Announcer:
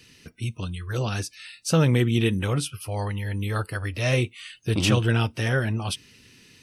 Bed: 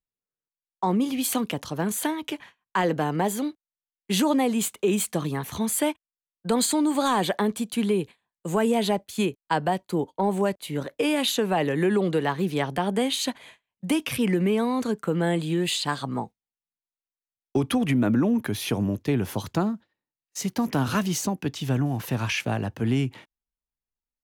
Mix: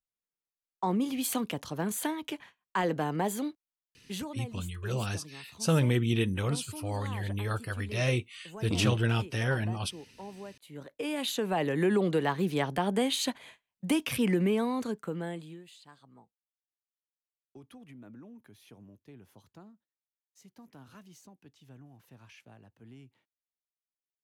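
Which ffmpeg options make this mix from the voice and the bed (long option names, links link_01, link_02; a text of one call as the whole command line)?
ffmpeg -i stem1.wav -i stem2.wav -filter_complex "[0:a]adelay=3950,volume=-5.5dB[link_01];[1:a]volume=11.5dB,afade=type=out:start_time=3.66:duration=0.67:silence=0.177828,afade=type=in:start_time=10.59:duration=1.3:silence=0.141254,afade=type=out:start_time=14.41:duration=1.23:silence=0.0595662[link_02];[link_01][link_02]amix=inputs=2:normalize=0" out.wav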